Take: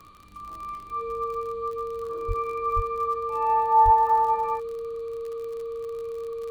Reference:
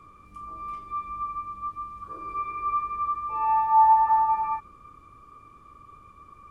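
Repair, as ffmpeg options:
-filter_complex "[0:a]adeclick=t=4,bandreject=f=460:w=30,asplit=3[a][b][c];[a]afade=t=out:st=2.27:d=0.02[d];[b]highpass=f=140:w=0.5412,highpass=f=140:w=1.3066,afade=t=in:st=2.27:d=0.02,afade=t=out:st=2.39:d=0.02[e];[c]afade=t=in:st=2.39:d=0.02[f];[d][e][f]amix=inputs=3:normalize=0,asplit=3[g][h][i];[g]afade=t=out:st=2.75:d=0.02[j];[h]highpass=f=140:w=0.5412,highpass=f=140:w=1.3066,afade=t=in:st=2.75:d=0.02,afade=t=out:st=2.87:d=0.02[k];[i]afade=t=in:st=2.87:d=0.02[l];[j][k][l]amix=inputs=3:normalize=0,asplit=3[m][n][o];[m]afade=t=out:st=3.84:d=0.02[p];[n]highpass=f=140:w=0.5412,highpass=f=140:w=1.3066,afade=t=in:st=3.84:d=0.02,afade=t=out:st=3.96:d=0.02[q];[o]afade=t=in:st=3.96:d=0.02[r];[p][q][r]amix=inputs=3:normalize=0,afftdn=nr=13:nf=-39"

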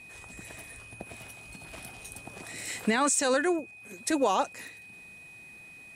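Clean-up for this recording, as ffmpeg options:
-af "bandreject=f=2.5k:w=30"

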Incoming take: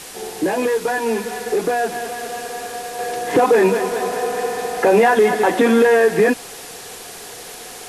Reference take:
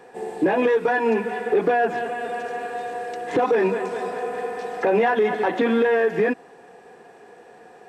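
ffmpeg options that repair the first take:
-af "afwtdn=0.02,asetnsamples=n=441:p=0,asendcmd='2.99 volume volume -6dB',volume=0dB"

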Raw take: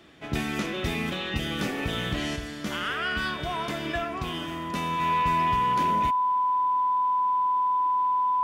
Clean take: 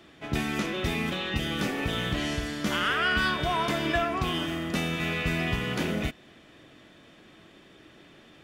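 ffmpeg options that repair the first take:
-af "bandreject=f=1k:w=30,asetnsamples=n=441:p=0,asendcmd='2.36 volume volume 3.5dB',volume=0dB"

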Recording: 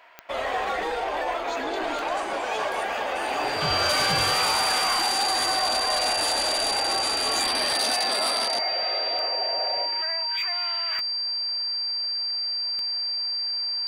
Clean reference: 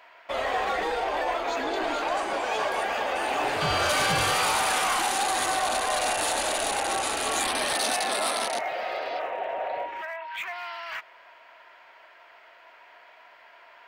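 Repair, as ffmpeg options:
-af "adeclick=t=4,bandreject=f=4.7k:w=30"

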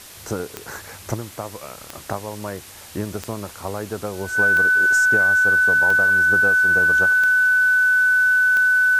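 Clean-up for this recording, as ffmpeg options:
-af "adeclick=t=4,bandreject=f=1.5k:w=30,afftdn=nr=25:nf=-40"

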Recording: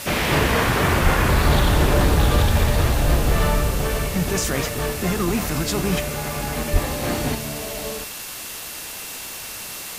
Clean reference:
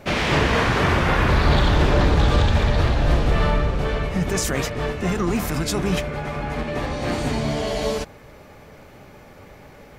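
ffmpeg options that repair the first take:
-filter_complex "[0:a]bandreject=f=2.7k:w=30,asplit=3[a][b][c];[a]afade=t=out:st=1.03:d=0.02[d];[b]highpass=f=140:w=0.5412,highpass=f=140:w=1.3066,afade=t=in:st=1.03:d=0.02,afade=t=out:st=1.15:d=0.02[e];[c]afade=t=in:st=1.15:d=0.02[f];[d][e][f]amix=inputs=3:normalize=0,asplit=3[g][h][i];[g]afade=t=out:st=2.6:d=0.02[j];[h]highpass=f=140:w=0.5412,highpass=f=140:w=1.3066,afade=t=in:st=2.6:d=0.02,afade=t=out:st=2.72:d=0.02[k];[i]afade=t=in:st=2.72:d=0.02[l];[j][k][l]amix=inputs=3:normalize=0,asplit=3[m][n][o];[m]afade=t=out:st=6.72:d=0.02[p];[n]highpass=f=140:w=0.5412,highpass=f=140:w=1.3066,afade=t=in:st=6.72:d=0.02,afade=t=out:st=6.84:d=0.02[q];[o]afade=t=in:st=6.84:d=0.02[r];[p][q][r]amix=inputs=3:normalize=0,afwtdn=0.025,asetnsamples=n=441:p=0,asendcmd='7.35 volume volume 7.5dB',volume=0dB"

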